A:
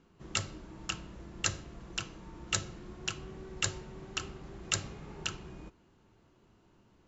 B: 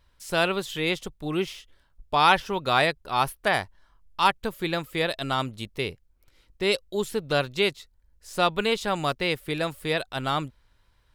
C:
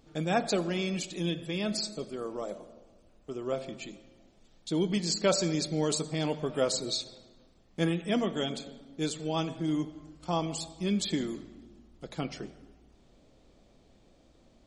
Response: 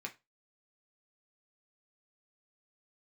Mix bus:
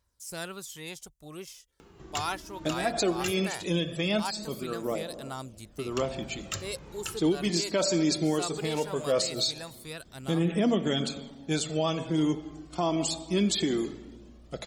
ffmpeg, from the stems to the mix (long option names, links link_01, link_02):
-filter_complex "[0:a]acompressor=mode=upward:threshold=-42dB:ratio=2.5,asoftclip=type=tanh:threshold=-21.5dB,adelay=1800,volume=-1.5dB,asplit=3[link_01][link_02][link_03];[link_01]atrim=end=3.32,asetpts=PTS-STARTPTS,afade=type=out:start_time=3.316:duration=0.004:curve=hsin[link_04];[link_02]atrim=start=3.32:end=5.91,asetpts=PTS-STARTPTS,volume=0[link_05];[link_03]atrim=start=5.91,asetpts=PTS-STARTPTS,afade=type=in:duration=0.004:curve=hsin[link_06];[link_04][link_05][link_06]concat=n=3:v=0:a=1[link_07];[1:a]highshelf=frequency=4600:width_type=q:width=1.5:gain=11,volume=-14dB,asplit=2[link_08][link_09];[2:a]acontrast=37,adelay=2500,volume=0.5dB[link_10];[link_09]apad=whole_len=757049[link_11];[link_10][link_11]sidechaincompress=threshold=-44dB:ratio=8:attack=50:release=124[link_12];[link_07][link_08][link_12]amix=inputs=3:normalize=0,highpass=42,aphaser=in_gain=1:out_gain=1:delay=3.3:decay=0.4:speed=0.19:type=triangular,alimiter=limit=-17dB:level=0:latency=1:release=129"